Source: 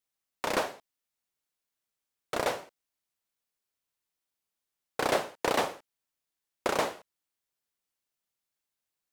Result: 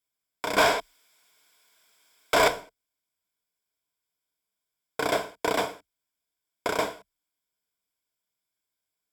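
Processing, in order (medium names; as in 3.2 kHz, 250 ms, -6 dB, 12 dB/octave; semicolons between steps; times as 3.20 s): 0.58–2.48 s: overdrive pedal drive 32 dB, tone 5.4 kHz, clips at -13.5 dBFS; rippled EQ curve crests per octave 1.7, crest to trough 10 dB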